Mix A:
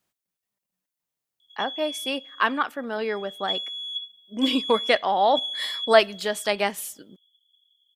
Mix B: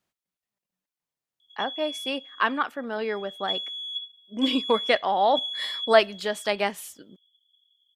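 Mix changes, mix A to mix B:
speech: send -10.0 dB; master: add high shelf 7500 Hz -7.5 dB

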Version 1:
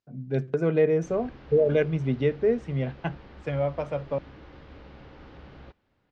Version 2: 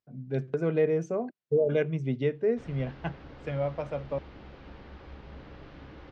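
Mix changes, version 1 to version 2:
speech -3.5 dB; background: entry +1.55 s

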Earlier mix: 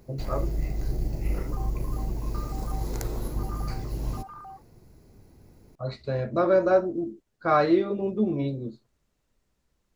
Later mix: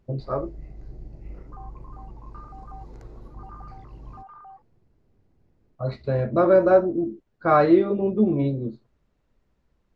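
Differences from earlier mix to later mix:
speech +5.5 dB; first sound -11.5 dB; master: add tape spacing loss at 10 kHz 22 dB

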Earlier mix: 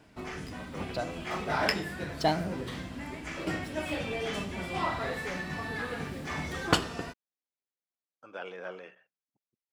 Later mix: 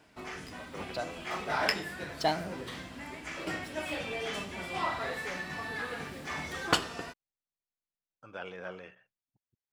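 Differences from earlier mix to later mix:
speech: remove HPF 340 Hz 12 dB/oct; master: add low shelf 350 Hz -8.5 dB

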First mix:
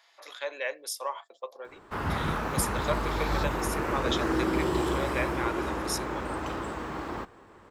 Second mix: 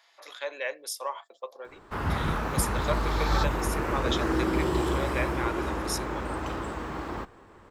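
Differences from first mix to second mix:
second sound +5.5 dB; master: add low shelf 73 Hz +7.5 dB

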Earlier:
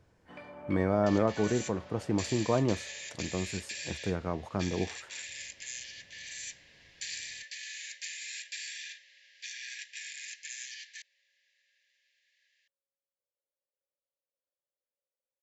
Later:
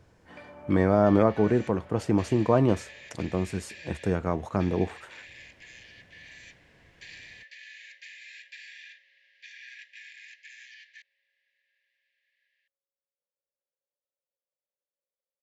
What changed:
speech +6.0 dB; second sound: add LPF 2400 Hz 12 dB/oct

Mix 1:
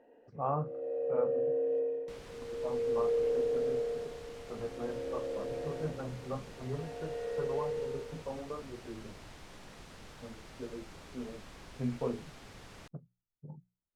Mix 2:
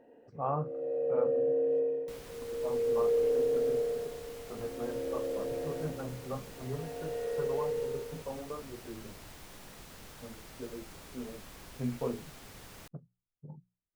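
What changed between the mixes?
first sound: remove HPF 400 Hz 6 dB/oct; master: remove air absorption 59 m

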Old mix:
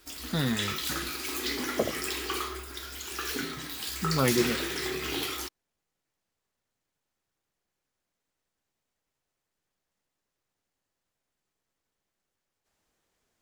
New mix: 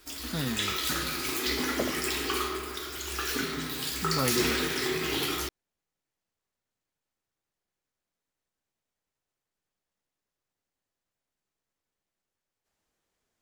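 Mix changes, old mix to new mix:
speech -4.0 dB; reverb: on, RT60 2.5 s

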